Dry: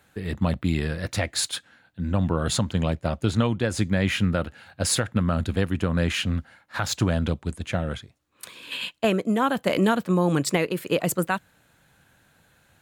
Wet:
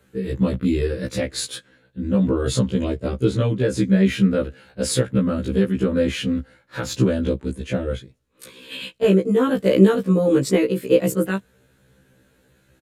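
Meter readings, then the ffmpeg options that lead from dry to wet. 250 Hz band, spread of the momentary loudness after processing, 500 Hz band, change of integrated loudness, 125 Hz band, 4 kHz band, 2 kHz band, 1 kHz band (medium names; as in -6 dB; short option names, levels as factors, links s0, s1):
+6.0 dB, 12 LU, +7.0 dB, +4.5 dB, +2.0 dB, -1.5 dB, -2.0 dB, -4.5 dB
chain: -af "lowshelf=f=590:t=q:w=3:g=6,aresample=32000,aresample=44100,afftfilt=real='re*1.73*eq(mod(b,3),0)':imag='im*1.73*eq(mod(b,3),0)':win_size=2048:overlap=0.75,volume=1.12"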